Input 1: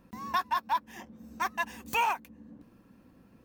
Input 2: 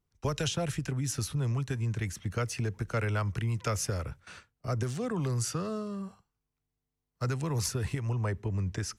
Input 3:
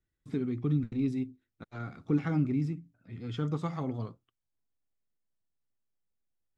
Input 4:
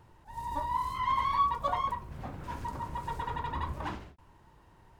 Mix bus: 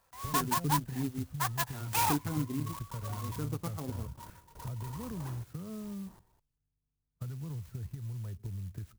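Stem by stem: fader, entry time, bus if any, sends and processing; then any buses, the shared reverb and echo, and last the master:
-1.5 dB, 0.00 s, no send, high-pass 650 Hz 24 dB/octave
-11.0 dB, 0.00 s, no send, tone controls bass +14 dB, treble -11 dB; compression 10:1, threshold -26 dBFS, peak gain reduction 11.5 dB
-6.0 dB, 0.00 s, no send, treble shelf 3.9 kHz +10.5 dB; transient shaper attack +2 dB, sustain -12 dB
-15.5 dB, 1.40 s, no send, trance gate "xx...x.x..x.xxx" 119 bpm -24 dB; level flattener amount 50%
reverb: none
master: sampling jitter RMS 0.088 ms

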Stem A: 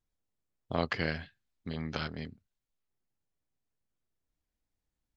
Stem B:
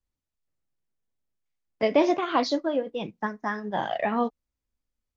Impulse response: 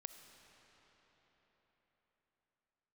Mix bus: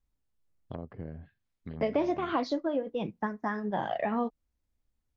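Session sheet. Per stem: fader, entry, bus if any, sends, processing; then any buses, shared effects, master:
-3.0 dB, 0.00 s, no send, low-pass that closes with the level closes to 580 Hz, closed at -31 dBFS; compression 2.5:1, threshold -36 dBFS, peak gain reduction 7.5 dB
0.0 dB, 0.00 s, no send, treble shelf 3 kHz -9.5 dB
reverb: none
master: bass shelf 160 Hz +5.5 dB; compression 2.5:1, threshold -28 dBFS, peak gain reduction 8.5 dB

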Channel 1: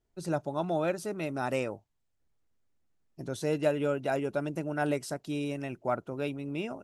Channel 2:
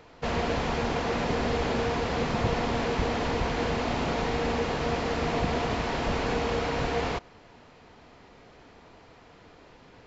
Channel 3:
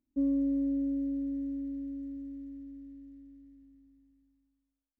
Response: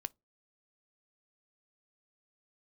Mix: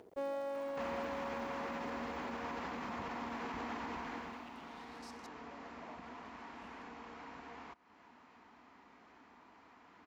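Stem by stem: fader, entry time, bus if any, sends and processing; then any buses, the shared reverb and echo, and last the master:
-17.5 dB, 0.00 s, bus A, no send, one-bit comparator; LFO band-pass saw up 0.38 Hz 430–5700 Hz
3.91 s -5.5 dB -> 4.48 s -17.5 dB, 0.55 s, bus A, no send, graphic EQ 125/250/500/1000/2000/4000 Hz -12/+9/-7/+9/+4/-3 dB; compression 3:1, threshold -32 dBFS, peak gain reduction 8.5 dB
+1.5 dB, 0.00 s, no bus, no send, tilt EQ +3 dB/octave; full-wave rectifier
bus A: 0.0 dB, upward compressor, threshold -53 dBFS; peak limiter -33.5 dBFS, peak gain reduction 9.5 dB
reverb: none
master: high-pass 80 Hz 12 dB/octave

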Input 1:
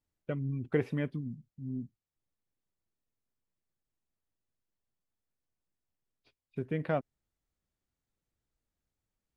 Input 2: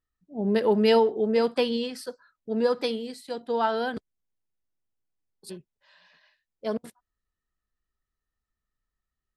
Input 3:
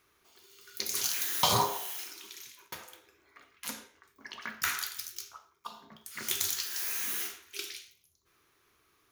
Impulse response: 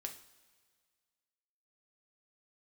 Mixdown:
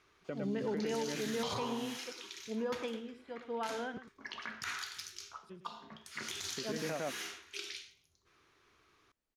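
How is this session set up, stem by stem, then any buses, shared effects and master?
0.0 dB, 0.00 s, bus A, no send, echo send -4 dB, high-pass 240 Hz 12 dB/octave
-9.0 dB, 0.00 s, no bus, no send, echo send -12 dB, Savitzky-Golay filter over 25 samples; peaking EQ 610 Hz -3.5 dB 1.9 oct
+1.5 dB, 0.00 s, bus A, no send, no echo send, none
bus A: 0.0 dB, low-pass 5.6 kHz 12 dB/octave; compression 2:1, threshold -39 dBFS, peak gain reduction 10 dB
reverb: none
echo: delay 106 ms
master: peak limiter -27.5 dBFS, peak gain reduction 10 dB

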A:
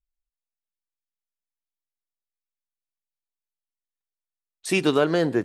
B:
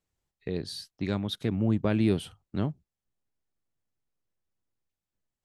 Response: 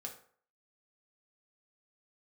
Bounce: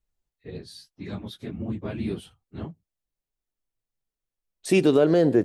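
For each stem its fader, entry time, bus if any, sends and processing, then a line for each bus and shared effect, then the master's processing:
-2.0 dB, 0.00 s, no send, resonant low shelf 770 Hz +6.5 dB, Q 1.5
-5.5 dB, 0.00 s, no send, phase randomisation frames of 50 ms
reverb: none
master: peak limiter -10 dBFS, peak gain reduction 5 dB

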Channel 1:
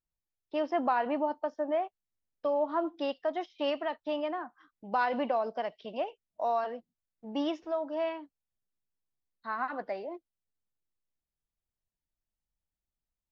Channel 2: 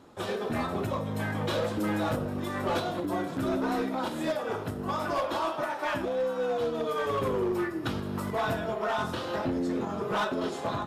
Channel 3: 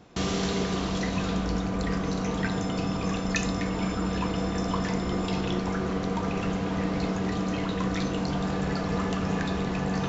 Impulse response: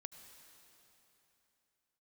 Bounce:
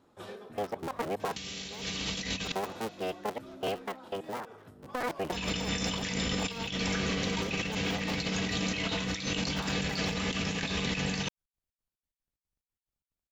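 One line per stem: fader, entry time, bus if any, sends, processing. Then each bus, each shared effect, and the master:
-4.0 dB, 0.00 s, no send, cycle switcher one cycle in 3, inverted; trance gate "x.x.xx.x" 182 bpm -24 dB
-13.0 dB, 0.00 s, no send, auto duck -8 dB, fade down 0.25 s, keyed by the first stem
-5.5 dB, 1.20 s, muted 2.52–5.32 s, send -7 dB, resonant high shelf 1.7 kHz +12 dB, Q 1.5; comb of notches 350 Hz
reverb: on, RT60 3.3 s, pre-delay 68 ms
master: compressor with a negative ratio -32 dBFS, ratio -0.5

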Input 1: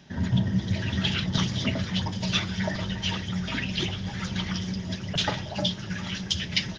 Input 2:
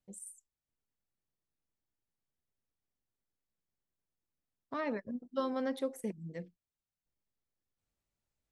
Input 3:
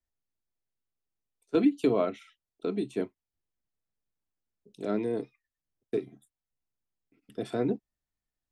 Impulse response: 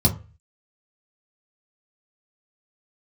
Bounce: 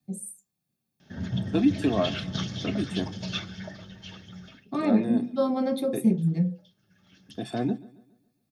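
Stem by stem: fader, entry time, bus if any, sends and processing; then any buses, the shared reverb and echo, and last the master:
3.26 s -4 dB -> 3.86 s -13 dB -> 6.44 s -13 dB -> 6.99 s -23.5 dB, 1.00 s, no send, no echo send, band-stop 2.4 kHz, Q 12; auto duck -23 dB, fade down 0.25 s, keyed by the second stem
+0.5 dB, 0.00 s, send -7 dB, no echo send, high-pass 140 Hz 24 dB/octave; treble shelf 10 kHz +8 dB
+2.5 dB, 0.00 s, no send, echo send -20.5 dB, comb 1.1 ms, depth 69%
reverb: on, RT60 0.35 s, pre-delay 3 ms
echo: feedback delay 139 ms, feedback 42%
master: comb of notches 990 Hz

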